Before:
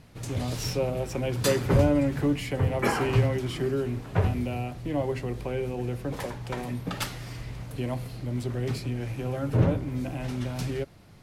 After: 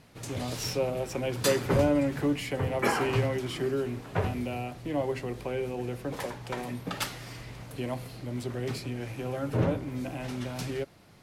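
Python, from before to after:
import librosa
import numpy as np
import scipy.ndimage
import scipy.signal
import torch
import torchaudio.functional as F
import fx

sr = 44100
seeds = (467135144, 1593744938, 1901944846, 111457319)

y = fx.low_shelf(x, sr, hz=140.0, db=-10.5)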